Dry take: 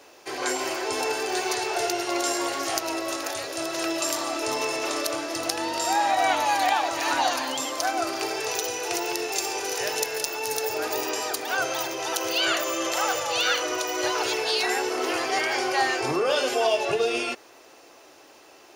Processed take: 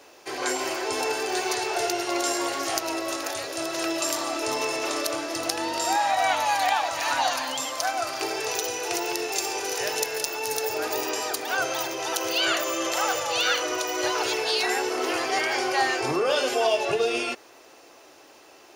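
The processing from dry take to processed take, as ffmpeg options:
ffmpeg -i in.wav -filter_complex "[0:a]asettb=1/sr,asplit=3[link_01][link_02][link_03];[link_01]atrim=end=5.964[link_04];[link_02]atrim=start=5.96:end=8.21,asetpts=PTS-STARTPTS,afade=type=in:duration=0.004:curve=qsin,afade=type=out:start_time=2.246:duration=0.004:curve=qsin,equalizer=frequency=350:width=2.7:gain=-13.5[link_05];[link_03]atrim=start=8.206[link_06];[link_04][link_05]acrossfade=duration=0.004:curve1=hsin:curve2=qsin[link_07];[link_07][link_06]acrossfade=duration=0.004:curve1=qsin:curve2=hsin" out.wav

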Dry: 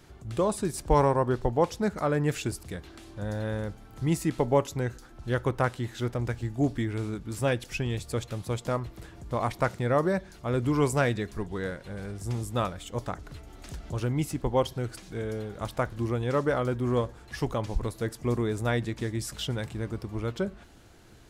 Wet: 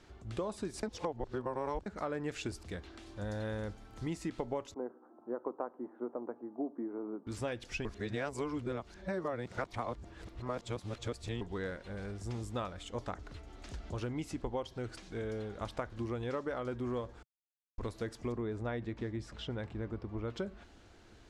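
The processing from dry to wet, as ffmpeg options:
ffmpeg -i in.wav -filter_complex "[0:a]asettb=1/sr,asplit=3[link_01][link_02][link_03];[link_01]atrim=end=3.064[link_04];[link_02]atrim=start=3.06:end=4.08,asetpts=PTS-STARTPTS,afade=type=in:duration=0.004:curve=qsin,afade=type=out:start_time=1.016:duration=0.004:curve=qsin,highshelf=frequency=6100:gain=7[link_05];[link_03]atrim=start=4.076[link_06];[link_04][link_05]acrossfade=duration=0.004:curve1=hsin:curve2=qsin[link_07];[link_07][link_06]acrossfade=duration=0.004:curve1=qsin:curve2=hsin,asettb=1/sr,asplit=3[link_08][link_09][link_10];[link_08]atrim=end=4.744[link_11];[link_09]atrim=start=4.74:end=7.27,asetpts=PTS-STARTPTS,afade=type=in:duration=0.004:curve=qsin,afade=type=out:start_time=2.526:duration=0.004:curve=qsin,asuperpass=centerf=520:order=8:qfactor=0.58[link_12];[link_10]atrim=start=7.266[link_13];[link_11][link_12]acrossfade=duration=0.004:curve1=hsin:curve2=qsin[link_14];[link_14][link_13]acrossfade=duration=0.004:curve1=qsin:curve2=hsin,asettb=1/sr,asplit=3[link_15][link_16][link_17];[link_15]atrim=end=18.324[link_18];[link_16]atrim=start=18.32:end=20.3,asetpts=PTS-STARTPTS,afade=type=in:duration=0.004:curve=qsin,afade=type=out:start_time=1.976:duration=0.004:curve=qsin,lowpass=frequency=1600:poles=1[link_19];[link_17]atrim=start=20.296[link_20];[link_18][link_19]acrossfade=duration=0.004:curve1=hsin:curve2=qsin[link_21];[link_21][link_20]acrossfade=duration=0.004:curve1=qsin:curve2=hsin,asplit=7[link_22][link_23][link_24][link_25][link_26][link_27][link_28];[link_22]atrim=end=0.832[link_29];[link_23]atrim=start=0.828:end=1.862,asetpts=PTS-STARTPTS,areverse[link_30];[link_24]atrim=start=1.858:end=7.852[link_31];[link_25]atrim=start=7.848:end=11.412,asetpts=PTS-STARTPTS,areverse[link_32];[link_26]atrim=start=11.408:end=17.23,asetpts=PTS-STARTPTS,afade=type=out:start_time=5.818:duration=0.004:curve=hsin[link_33];[link_27]atrim=start=17.23:end=17.78,asetpts=PTS-STARTPTS,volume=0[link_34];[link_28]atrim=start=17.78,asetpts=PTS-STARTPTS,afade=type=in:duration=0.004:curve=hsin[link_35];[link_29][link_30]acrossfade=duration=0.004:curve1=hsin:curve2=hsin[link_36];[link_36][link_31]acrossfade=duration=0.004:curve1=hsin:curve2=hsin[link_37];[link_37][link_32]acrossfade=duration=0.004:curve1=hsin:curve2=hsin[link_38];[link_33][link_34][link_35]concat=n=3:v=0:a=1[link_39];[link_38][link_39]acrossfade=duration=0.004:curve1=hsin:curve2=hsin,lowpass=6400,equalizer=frequency=140:width=3.4:gain=-10,acompressor=threshold=-30dB:ratio=6,volume=-3.5dB" out.wav

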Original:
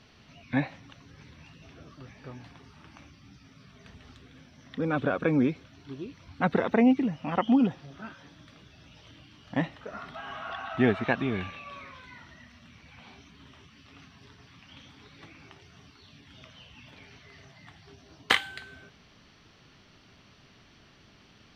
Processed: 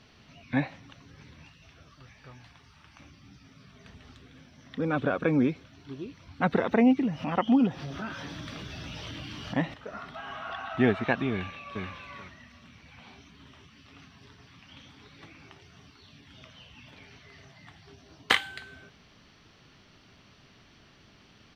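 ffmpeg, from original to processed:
ffmpeg -i in.wav -filter_complex "[0:a]asettb=1/sr,asplit=3[link_01][link_02][link_03];[link_01]atrim=end=1.494[link_04];[link_02]atrim=start=1.49:end=3,asetpts=PTS-STARTPTS,afade=type=in:duration=0.004:curve=qsin,afade=type=out:start_time=1.506:duration=0.004:curve=qsin,equalizer=frequency=310:width=0.53:gain=-10.5[link_05];[link_03]atrim=start=2.996[link_06];[link_04][link_05]acrossfade=duration=0.004:curve1=hsin:curve2=qsin[link_07];[link_07][link_06]acrossfade=duration=0.004:curve1=qsin:curve2=hsin,asettb=1/sr,asplit=3[link_08][link_09][link_10];[link_08]atrim=end=6.434[link_11];[link_09]atrim=start=6.43:end=9.74,asetpts=PTS-STARTPTS,afade=type=in:duration=0.004:curve=qsin,afade=type=out:start_time=3.306:duration=0.004:curve=qsin,acompressor=mode=upward:threshold=-26dB:ratio=2.5:attack=3.2:release=140:knee=2.83:detection=peak[link_12];[link_10]atrim=start=9.736[link_13];[link_11][link_12]acrossfade=duration=0.004:curve1=hsin:curve2=qsin[link_14];[link_14][link_13]acrossfade=duration=0.004:curve1=qsin:curve2=hsin,asplit=2[link_15][link_16];[link_16]afade=type=in:start_time=11.32:duration=0.01,afade=type=out:start_time=11.85:duration=0.01,aecho=0:1:430|860|1290:0.668344|0.100252|0.0150377[link_17];[link_15][link_17]amix=inputs=2:normalize=0" out.wav

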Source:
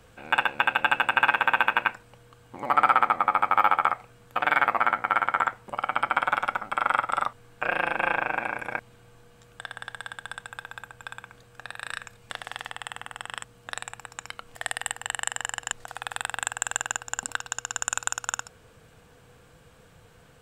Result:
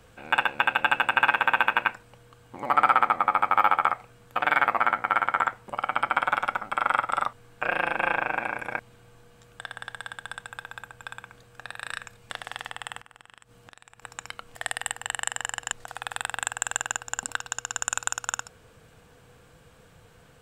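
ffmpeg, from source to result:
ffmpeg -i in.wav -filter_complex "[0:a]asettb=1/sr,asplit=3[link_01][link_02][link_03];[link_01]atrim=end=13.004[link_04];[link_02]atrim=start=13:end=14.02,asetpts=PTS-STARTPTS,afade=type=in:duration=0.004:curve=qsin,afade=type=out:start_time=1.016:duration=0.004:curve=qsin,acompressor=threshold=-46dB:ratio=8:attack=3.2:release=140:knee=1:detection=peak[link_05];[link_03]atrim=start=14.016[link_06];[link_04][link_05]acrossfade=duration=0.004:curve1=hsin:curve2=qsin[link_07];[link_07][link_06]acrossfade=duration=0.004:curve1=qsin:curve2=hsin" out.wav

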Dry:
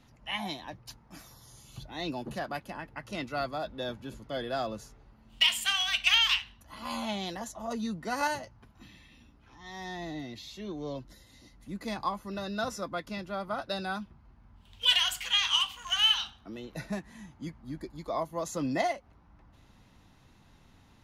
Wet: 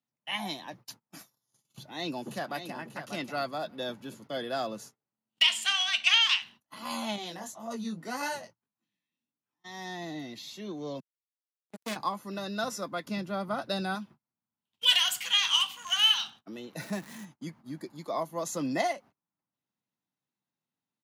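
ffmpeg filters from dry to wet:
ffmpeg -i in.wav -filter_complex "[0:a]asplit=2[link_01][link_02];[link_02]afade=type=in:start_time=1.63:duration=0.01,afade=type=out:start_time=2.76:duration=0.01,aecho=0:1:590|1180:0.375837|0.0375837[link_03];[link_01][link_03]amix=inputs=2:normalize=0,asettb=1/sr,asplit=3[link_04][link_05][link_06];[link_04]atrim=end=5.424[link_07];[link_05]atrim=start=5.42:end=6.42,asetpts=PTS-STARTPTS,afade=type=in:duration=0.004:curve=qsin,afade=type=out:start_time=0.996:duration=0.004:curve=qsin,highpass=240,lowpass=7000[link_08];[link_06]atrim=start=6.416[link_09];[link_07][link_08]acrossfade=duration=0.004:curve1=hsin:curve2=qsin[link_10];[link_10][link_09]acrossfade=duration=0.004:curve1=qsin:curve2=hsin,asettb=1/sr,asplit=3[link_11][link_12][link_13];[link_11]atrim=end=7.164[link_14];[link_12]atrim=start=7.16:end=9.64,asetpts=PTS-STARTPTS,afade=type=in:duration=0.004:curve=qsin,afade=type=out:start_time=2.476:duration=0.004:curve=qsin,flanger=delay=17.5:depth=6.9:speed=1.8[link_15];[link_13]atrim=start=9.636[link_16];[link_14][link_15]acrossfade=duration=0.004:curve1=hsin:curve2=qsin[link_17];[link_17][link_16]acrossfade=duration=0.004:curve1=qsin:curve2=hsin,asettb=1/sr,asplit=3[link_18][link_19][link_20];[link_18]atrim=end=11.004[link_21];[link_19]atrim=start=11:end=11.96,asetpts=PTS-STARTPTS,afade=type=in:duration=0.004:curve=qsin,afade=type=out:start_time=0.956:duration=0.004:curve=qsin,acrusher=bits=4:mix=0:aa=0.5[link_22];[link_20]atrim=start=11.956[link_23];[link_21][link_22]acrossfade=duration=0.004:curve1=hsin:curve2=qsin[link_24];[link_24][link_23]acrossfade=duration=0.004:curve1=qsin:curve2=hsin,asettb=1/sr,asplit=3[link_25][link_26][link_27];[link_25]atrim=end=13.054[link_28];[link_26]atrim=start=13.05:end=13.95,asetpts=PTS-STARTPTS,afade=type=in:duration=0.004:curve=qsin,afade=type=out:start_time=0.896:duration=0.004:curve=qsin,lowshelf=frequency=270:gain=8.5[link_29];[link_27]atrim=start=13.946[link_30];[link_28][link_29]acrossfade=duration=0.004:curve1=hsin:curve2=qsin[link_31];[link_31][link_30]acrossfade=duration=0.004:curve1=qsin:curve2=hsin,asettb=1/sr,asplit=3[link_32][link_33][link_34];[link_32]atrim=end=16.804[link_35];[link_33]atrim=start=16.8:end=17.25,asetpts=PTS-STARTPTS,afade=type=in:duration=0.004:curve=qsin,afade=type=out:start_time=0.446:duration=0.004:curve=qsin,aeval=exprs='val(0)+0.5*0.00531*sgn(val(0))':channel_layout=same[link_36];[link_34]atrim=start=17.246[link_37];[link_35][link_36]acrossfade=duration=0.004:curve1=hsin:curve2=qsin[link_38];[link_38][link_37]acrossfade=duration=0.004:curve1=qsin:curve2=hsin,agate=range=-31dB:threshold=-49dB:ratio=16:detection=peak,highpass=frequency=140:width=0.5412,highpass=frequency=140:width=1.3066,highshelf=frequency=6100:gain=6.5" out.wav

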